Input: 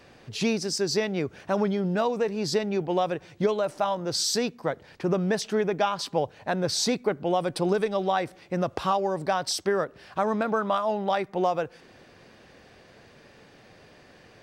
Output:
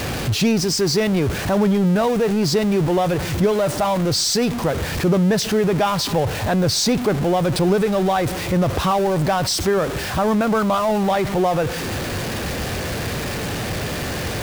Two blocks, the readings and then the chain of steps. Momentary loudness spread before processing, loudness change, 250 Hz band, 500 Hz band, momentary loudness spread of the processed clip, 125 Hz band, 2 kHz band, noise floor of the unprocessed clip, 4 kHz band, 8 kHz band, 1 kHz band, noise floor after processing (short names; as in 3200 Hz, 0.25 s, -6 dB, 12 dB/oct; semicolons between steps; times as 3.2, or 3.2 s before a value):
5 LU, +7.5 dB, +10.5 dB, +6.5 dB, 7 LU, +14.0 dB, +8.5 dB, -54 dBFS, +8.5 dB, +8.5 dB, +6.0 dB, -26 dBFS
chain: zero-crossing step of -27.5 dBFS; bell 73 Hz +10.5 dB 2.4 oct; in parallel at -1.5 dB: limiter -20 dBFS, peak gain reduction 10 dB